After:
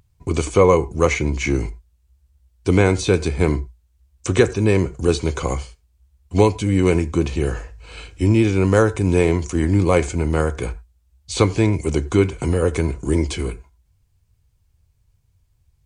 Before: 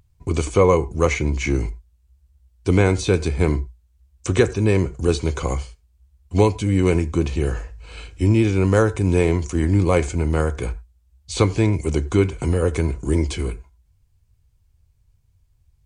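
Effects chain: bass shelf 73 Hz -6 dB; trim +2 dB

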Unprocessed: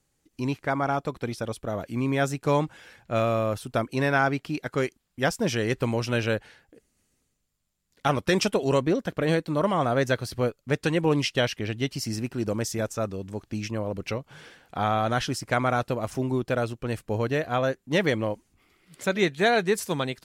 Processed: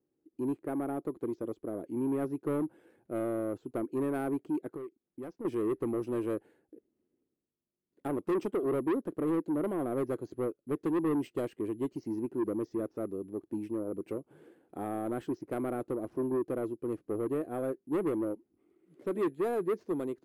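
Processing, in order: careless resampling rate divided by 4×, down filtered, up zero stuff; band-pass filter 340 Hz, Q 3.9; saturation -30.5 dBFS, distortion -10 dB; 4.73–5.45 s: compression 4:1, threshold -46 dBFS, peak gain reduction 11 dB; trim +5 dB

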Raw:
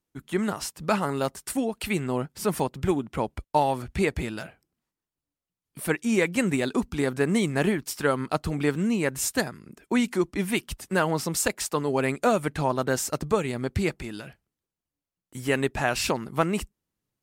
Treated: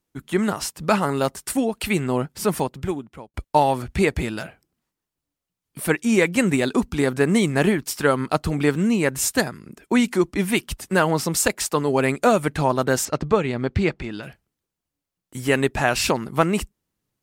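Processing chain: 2.40–3.34 s: fade out; 13.05–14.23 s: low-pass 4.2 kHz 12 dB/octave; trim +5 dB

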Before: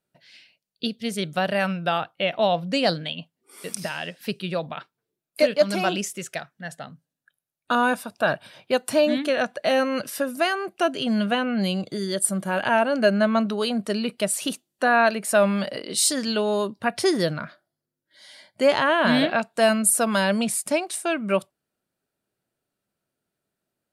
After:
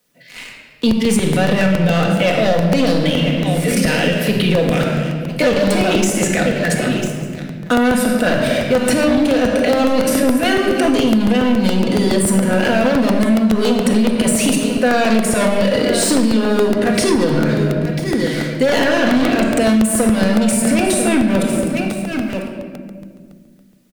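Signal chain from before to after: transient shaper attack -11 dB, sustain +7 dB; graphic EQ 125/250/500/1000/2000/8000 Hz +4/+7/+10/-9/+11/+5 dB; word length cut 12-bit, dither triangular; on a send: delay 997 ms -18.5 dB; on the sum: dynamic bell 1.9 kHz, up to -5 dB, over -33 dBFS, Q 1.7; in parallel at -9.5 dB: wavefolder -16 dBFS; on the sum: waveshaping leveller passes 3; simulated room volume 1400 m³, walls mixed, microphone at 1.9 m; compression, threshold -7 dBFS, peak gain reduction 12.5 dB; crackling interface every 0.14 s, samples 64, repeat, from 0.91 s; three bands compressed up and down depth 40%; trim -4.5 dB

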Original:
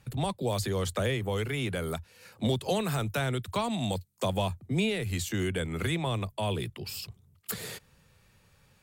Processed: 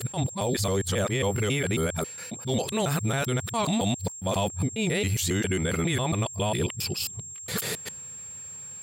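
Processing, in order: time reversed locally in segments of 136 ms; high-pass 83 Hz; peak limiter -27 dBFS, peak gain reduction 11 dB; whistle 7.5 kHz -47 dBFS; attacks held to a fixed rise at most 230 dB/s; trim +9 dB

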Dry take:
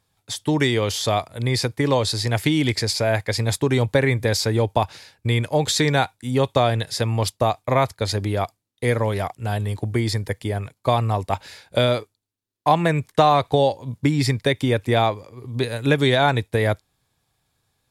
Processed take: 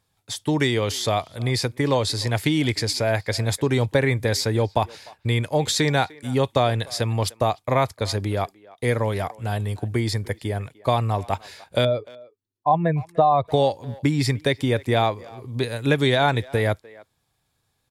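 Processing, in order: 11.85–13.48 s: spectral contrast enhancement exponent 1.7; speakerphone echo 300 ms, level -21 dB; trim -1.5 dB

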